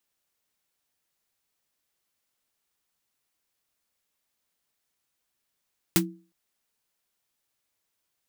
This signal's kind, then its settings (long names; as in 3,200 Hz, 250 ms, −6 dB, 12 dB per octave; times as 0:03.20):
synth snare length 0.36 s, tones 180 Hz, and 330 Hz, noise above 680 Hz, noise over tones 3 dB, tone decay 0.37 s, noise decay 0.10 s